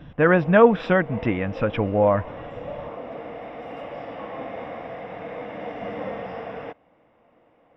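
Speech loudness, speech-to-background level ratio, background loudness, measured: -20.0 LUFS, 15.5 dB, -35.5 LUFS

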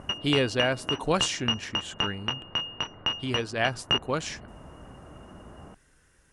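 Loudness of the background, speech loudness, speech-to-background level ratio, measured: -30.0 LUFS, -29.5 LUFS, 0.5 dB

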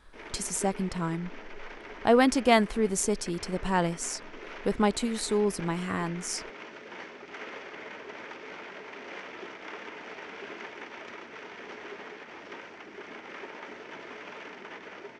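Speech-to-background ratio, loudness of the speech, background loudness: 15.0 dB, -28.0 LUFS, -43.0 LUFS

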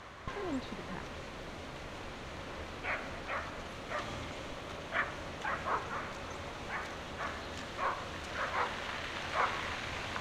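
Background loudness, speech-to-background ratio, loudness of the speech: -39.0 LUFS, -4.5 dB, -43.5 LUFS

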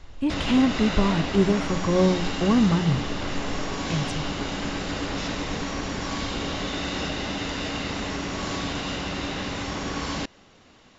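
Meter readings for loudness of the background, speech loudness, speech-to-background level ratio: -29.5 LUFS, -23.5 LUFS, 6.0 dB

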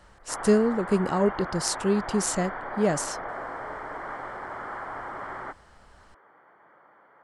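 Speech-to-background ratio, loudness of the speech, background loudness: 10.0 dB, -26.0 LUFS, -36.0 LUFS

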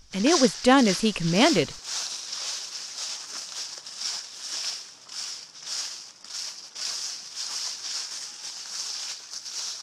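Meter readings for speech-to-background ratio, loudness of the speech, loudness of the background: 9.5 dB, -21.5 LUFS, -31.0 LUFS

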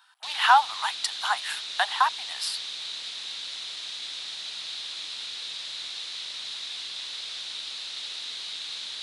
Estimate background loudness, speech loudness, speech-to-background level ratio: -33.5 LUFS, -25.5 LUFS, 8.0 dB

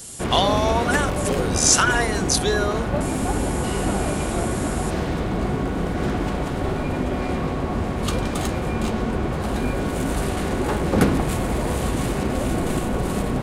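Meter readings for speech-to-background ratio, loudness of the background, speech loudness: 3.0 dB, -24.0 LUFS, -21.0 LUFS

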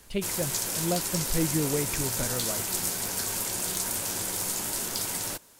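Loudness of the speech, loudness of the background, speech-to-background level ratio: -32.5 LUFS, -28.5 LUFS, -4.0 dB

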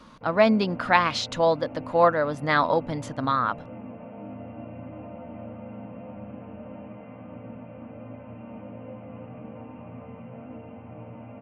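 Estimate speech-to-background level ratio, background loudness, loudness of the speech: 17.5 dB, -41.0 LUFS, -23.5 LUFS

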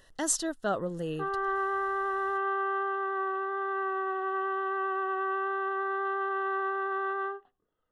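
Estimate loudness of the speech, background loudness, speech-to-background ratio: -31.5 LUFS, -31.0 LUFS, -0.5 dB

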